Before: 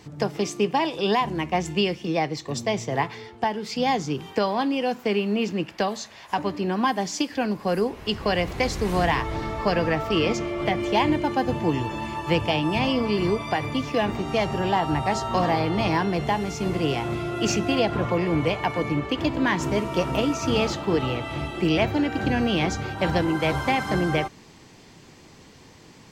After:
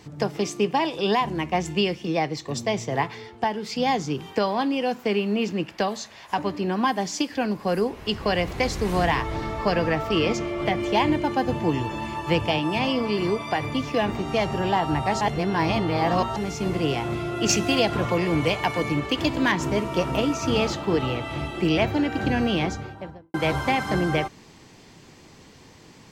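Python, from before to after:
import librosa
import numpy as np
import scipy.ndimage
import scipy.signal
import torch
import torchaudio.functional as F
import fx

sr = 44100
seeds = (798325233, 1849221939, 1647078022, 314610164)

y = fx.highpass(x, sr, hz=150.0, slope=6, at=(12.58, 13.56))
y = fx.high_shelf(y, sr, hz=3300.0, db=9.0, at=(17.49, 19.52))
y = fx.studio_fade_out(y, sr, start_s=22.45, length_s=0.89)
y = fx.edit(y, sr, fx.reverse_span(start_s=15.21, length_s=1.15), tone=tone)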